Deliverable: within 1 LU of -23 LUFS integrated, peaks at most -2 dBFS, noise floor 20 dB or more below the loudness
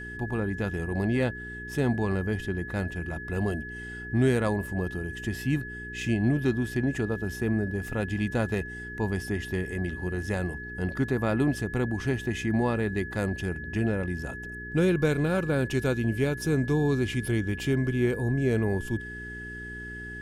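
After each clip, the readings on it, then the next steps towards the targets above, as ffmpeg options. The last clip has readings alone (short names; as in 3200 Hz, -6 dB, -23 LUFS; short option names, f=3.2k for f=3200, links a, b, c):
hum 60 Hz; harmonics up to 420 Hz; hum level -40 dBFS; steady tone 1700 Hz; tone level -38 dBFS; loudness -28.5 LUFS; peak -11.0 dBFS; loudness target -23.0 LUFS
-> -af "bandreject=f=60:t=h:w=4,bandreject=f=120:t=h:w=4,bandreject=f=180:t=h:w=4,bandreject=f=240:t=h:w=4,bandreject=f=300:t=h:w=4,bandreject=f=360:t=h:w=4,bandreject=f=420:t=h:w=4"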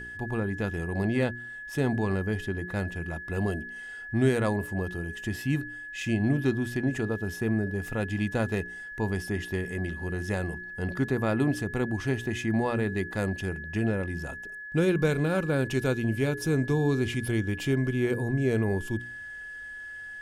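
hum none; steady tone 1700 Hz; tone level -38 dBFS
-> -af "bandreject=f=1.7k:w=30"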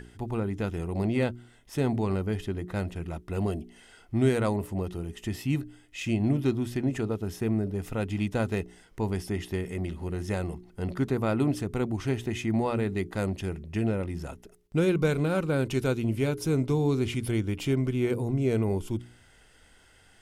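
steady tone none; loudness -29.5 LUFS; peak -11.0 dBFS; loudness target -23.0 LUFS
-> -af "volume=6.5dB"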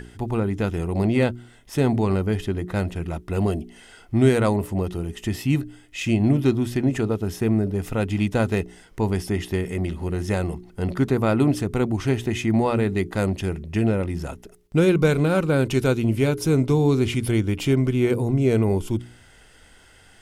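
loudness -23.0 LUFS; peak -4.5 dBFS; noise floor -51 dBFS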